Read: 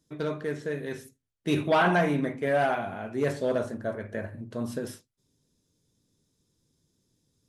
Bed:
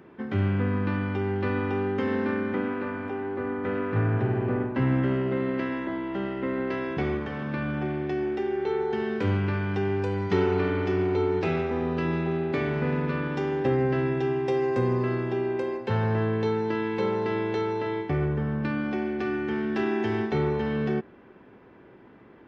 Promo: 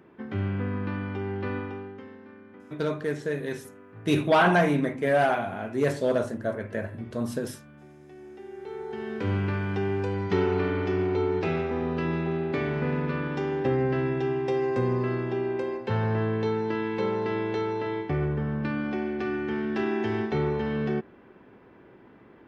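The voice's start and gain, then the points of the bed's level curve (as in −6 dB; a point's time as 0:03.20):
2.60 s, +2.5 dB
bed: 0:01.55 −4 dB
0:02.19 −21 dB
0:07.99 −21 dB
0:09.38 −1 dB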